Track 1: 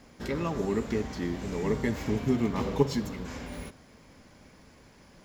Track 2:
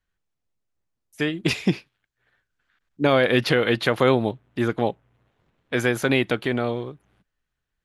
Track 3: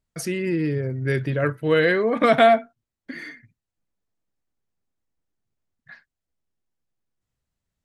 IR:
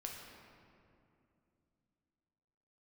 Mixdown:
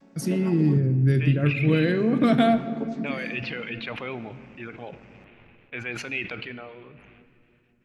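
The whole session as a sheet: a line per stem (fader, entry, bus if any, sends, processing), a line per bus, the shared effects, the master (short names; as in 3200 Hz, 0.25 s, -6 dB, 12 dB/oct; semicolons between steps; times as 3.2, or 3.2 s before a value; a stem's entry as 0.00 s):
+2.5 dB, 0.00 s, muted 0.78–1.69, send -10.5 dB, chord vocoder minor triad, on F#3; auto duck -12 dB, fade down 1.75 s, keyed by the third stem
-19.5 dB, 0.00 s, send -5.5 dB, reverb removal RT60 1.8 s; synth low-pass 2500 Hz, resonance Q 6.3; sustainer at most 29 dB/s
-4.5 dB, 0.00 s, send -4 dB, ten-band EQ 125 Hz +7 dB, 250 Hz +7 dB, 500 Hz -6 dB, 1000 Hz -6 dB, 2000 Hz -7 dB, 8000 Hz -3 dB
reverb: on, RT60 2.6 s, pre-delay 7 ms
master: dry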